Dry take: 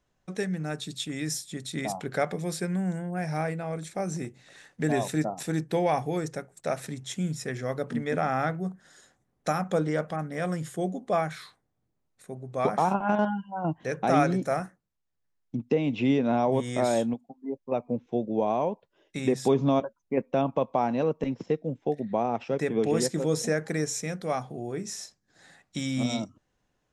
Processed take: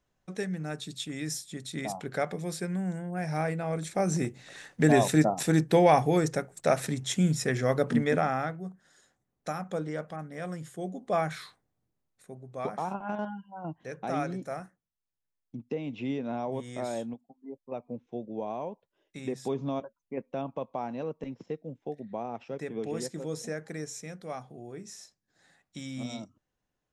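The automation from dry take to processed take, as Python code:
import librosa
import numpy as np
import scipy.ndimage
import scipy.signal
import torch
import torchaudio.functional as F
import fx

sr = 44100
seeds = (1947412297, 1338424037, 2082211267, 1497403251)

y = fx.gain(x, sr, db=fx.line((3.02, -3.0), (4.23, 5.0), (8.01, 5.0), (8.56, -7.0), (10.81, -7.0), (11.34, 1.0), (12.79, -9.0)))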